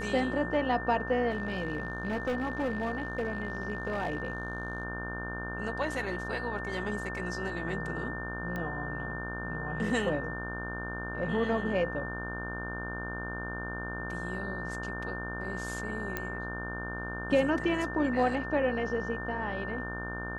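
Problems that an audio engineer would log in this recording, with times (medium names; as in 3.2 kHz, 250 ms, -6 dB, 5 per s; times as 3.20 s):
buzz 60 Hz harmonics 27 -39 dBFS
whine 1.8 kHz -38 dBFS
1.30–4.83 s: clipped -26.5 dBFS
8.56 s: pop -23 dBFS
16.17 s: pop -17 dBFS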